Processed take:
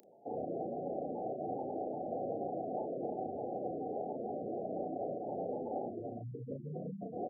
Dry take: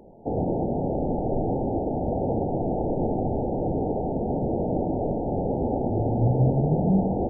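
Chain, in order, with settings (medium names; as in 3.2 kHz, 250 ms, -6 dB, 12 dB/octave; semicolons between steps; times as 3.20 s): spectral gate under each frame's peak -10 dB strong; high-pass 100 Hz; differentiator; doubling 34 ms -3.5 dB; trim +11.5 dB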